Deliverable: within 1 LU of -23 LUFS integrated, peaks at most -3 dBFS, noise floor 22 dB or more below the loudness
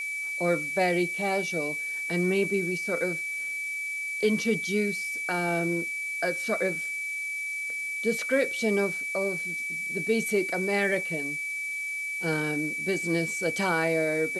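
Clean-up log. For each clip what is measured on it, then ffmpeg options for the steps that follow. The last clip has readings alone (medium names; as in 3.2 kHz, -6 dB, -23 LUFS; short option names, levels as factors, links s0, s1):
steady tone 2.3 kHz; tone level -30 dBFS; noise floor -33 dBFS; noise floor target -50 dBFS; loudness -27.5 LUFS; peak level -12.5 dBFS; loudness target -23.0 LUFS
-> -af "bandreject=f=2300:w=30"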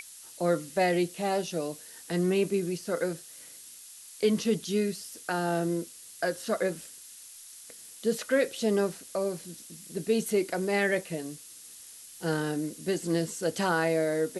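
steady tone not found; noise floor -49 dBFS; noise floor target -52 dBFS
-> -af "afftdn=nr=6:nf=-49"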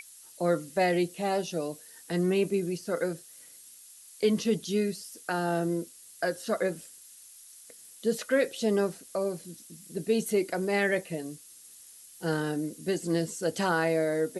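noise floor -52 dBFS; loudness -29.5 LUFS; peak level -13.0 dBFS; loudness target -23.0 LUFS
-> -af "volume=2.11"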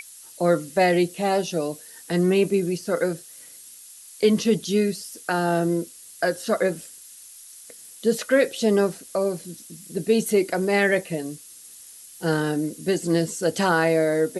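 loudness -23.0 LUFS; peak level -6.5 dBFS; noise floor -45 dBFS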